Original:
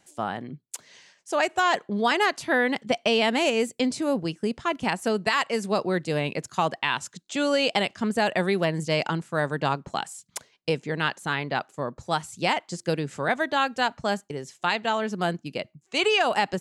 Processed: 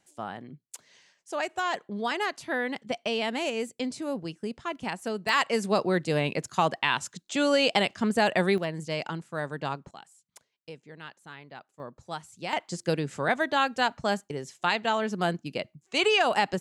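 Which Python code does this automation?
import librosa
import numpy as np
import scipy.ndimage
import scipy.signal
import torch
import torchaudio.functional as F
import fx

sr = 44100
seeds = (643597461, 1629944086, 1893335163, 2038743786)

y = fx.gain(x, sr, db=fx.steps((0.0, -7.0), (5.29, 0.0), (8.58, -7.0), (9.91, -18.0), (11.8, -10.5), (12.53, -1.0)))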